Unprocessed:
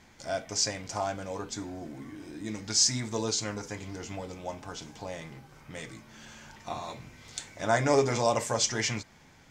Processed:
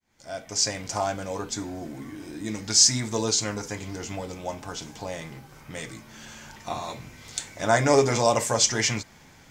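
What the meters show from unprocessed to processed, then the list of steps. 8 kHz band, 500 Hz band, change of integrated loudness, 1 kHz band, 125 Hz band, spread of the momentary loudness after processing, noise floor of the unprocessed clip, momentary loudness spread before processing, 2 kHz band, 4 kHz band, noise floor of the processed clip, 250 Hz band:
+6.5 dB, +4.5 dB, +5.5 dB, +4.5 dB, +4.5 dB, 20 LU, −57 dBFS, 21 LU, +4.5 dB, +5.5 dB, −52 dBFS, +4.5 dB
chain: fade in at the beginning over 0.82 s
high-shelf EQ 9,400 Hz +8 dB
level +4.5 dB

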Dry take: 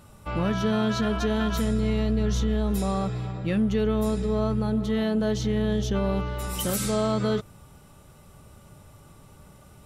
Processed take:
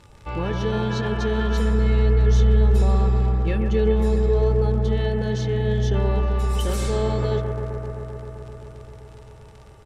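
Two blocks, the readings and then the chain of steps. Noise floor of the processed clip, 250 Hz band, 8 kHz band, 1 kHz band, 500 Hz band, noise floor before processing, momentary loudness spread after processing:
−45 dBFS, −2.5 dB, −4.5 dB, +1.5 dB, +4.0 dB, −52 dBFS, 15 LU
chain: high-shelf EQ 11,000 Hz +7.5 dB
notch filter 1,300 Hz, Q 11
comb filter 2.3 ms, depth 50%
surface crackle 69 per second −33 dBFS
high-frequency loss of the air 79 metres
bucket-brigade delay 130 ms, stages 2,048, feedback 84%, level −7 dB

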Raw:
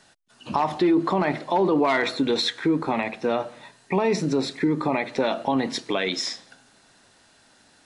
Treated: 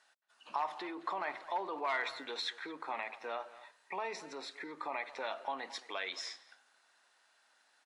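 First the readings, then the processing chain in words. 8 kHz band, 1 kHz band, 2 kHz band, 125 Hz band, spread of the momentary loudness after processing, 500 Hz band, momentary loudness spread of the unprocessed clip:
−15.0 dB, −11.5 dB, −10.5 dB, below −35 dB, 8 LU, −19.0 dB, 7 LU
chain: high-pass filter 1,100 Hz 12 dB per octave
high-shelf EQ 2,000 Hz −11.5 dB
far-end echo of a speakerphone 220 ms, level −16 dB
level −4.5 dB

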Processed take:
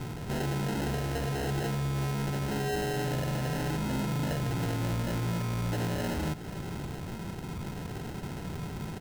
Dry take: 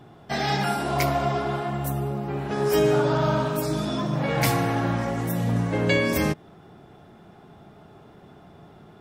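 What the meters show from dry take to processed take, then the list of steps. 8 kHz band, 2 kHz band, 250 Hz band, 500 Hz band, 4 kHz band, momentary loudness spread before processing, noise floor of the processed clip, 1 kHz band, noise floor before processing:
−5.0 dB, −8.5 dB, −6.0 dB, −10.5 dB, −7.0 dB, 7 LU, −39 dBFS, −10.0 dB, −50 dBFS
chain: spectral tilt −3.5 dB per octave
downward compressor, threshold −23 dBFS, peak gain reduction 12.5 dB
brickwall limiter −22.5 dBFS, peak gain reduction 7 dB
decimation without filtering 38×
soft clipping −32.5 dBFS, distortion −10 dB
on a send: single-tap delay 565 ms −15.5 dB
on the sum: level +4.5 dB

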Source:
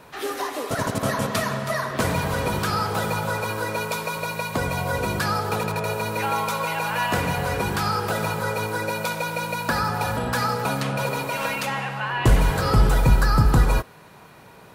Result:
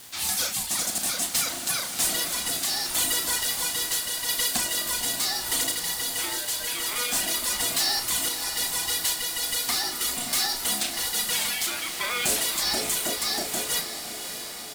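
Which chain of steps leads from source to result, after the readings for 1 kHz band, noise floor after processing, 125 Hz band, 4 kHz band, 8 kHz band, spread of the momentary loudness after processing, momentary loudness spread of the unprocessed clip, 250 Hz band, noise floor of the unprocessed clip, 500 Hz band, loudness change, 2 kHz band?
−11.0 dB, −35 dBFS, −24.0 dB, +7.5 dB, +12.0 dB, 4 LU, 8 LU, −12.0 dB, −47 dBFS, −12.0 dB, −0.5 dB, −5.0 dB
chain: RIAA equalisation recording
reverb reduction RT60 2 s
octave-band graphic EQ 250/500/1,000/4,000/8,000 Hz +10/−9/−4/+8/+9 dB
speech leveller 0.5 s
bit-depth reduction 6 bits, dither none
ring modulation 480 Hz
gain into a clipping stage and back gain 19 dB
sample-and-hold tremolo
double-tracking delay 35 ms −8 dB
feedback delay with all-pass diffusion 603 ms, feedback 69%, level −9 dB

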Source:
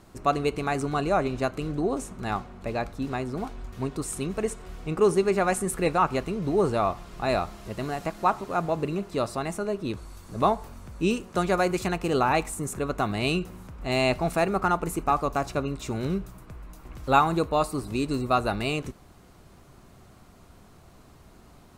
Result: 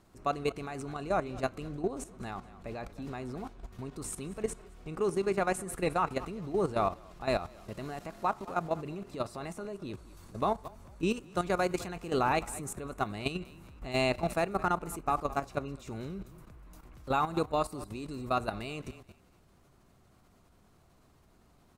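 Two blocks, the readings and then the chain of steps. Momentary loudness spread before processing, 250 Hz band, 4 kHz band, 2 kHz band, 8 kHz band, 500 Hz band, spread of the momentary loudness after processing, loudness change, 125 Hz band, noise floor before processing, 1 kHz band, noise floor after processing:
11 LU, −8.0 dB, −7.0 dB, −7.0 dB, −6.5 dB, −7.0 dB, 13 LU, −7.0 dB, −8.0 dB, −53 dBFS, −7.0 dB, −63 dBFS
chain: echo with shifted repeats 210 ms, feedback 31%, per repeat −30 Hz, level −18 dB
output level in coarse steps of 12 dB
level −3 dB

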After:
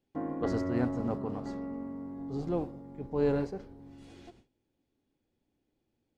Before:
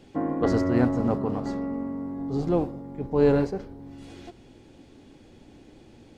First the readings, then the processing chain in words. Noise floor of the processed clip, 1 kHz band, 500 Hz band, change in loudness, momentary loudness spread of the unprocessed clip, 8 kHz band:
−81 dBFS, −8.0 dB, −8.0 dB, −8.0 dB, 22 LU, can't be measured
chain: noise gate with hold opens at −38 dBFS
level −8 dB

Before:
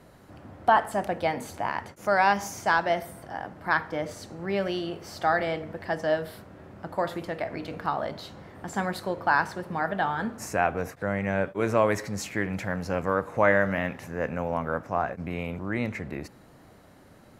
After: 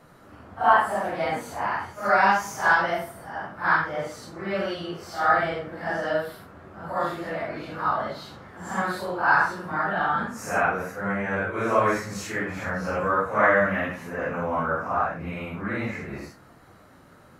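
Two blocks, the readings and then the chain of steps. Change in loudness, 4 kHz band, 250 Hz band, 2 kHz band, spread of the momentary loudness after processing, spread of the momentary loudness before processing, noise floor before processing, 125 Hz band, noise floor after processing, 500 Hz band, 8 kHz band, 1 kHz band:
+3.0 dB, +0.5 dB, 0.0 dB, +4.5 dB, 15 LU, 13 LU, −53 dBFS, −1.0 dB, −52 dBFS, +0.5 dB, 0.0 dB, +3.5 dB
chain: random phases in long frames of 200 ms
parametric band 1,300 Hz +8 dB 0.69 octaves
mains-hum notches 50/100 Hz

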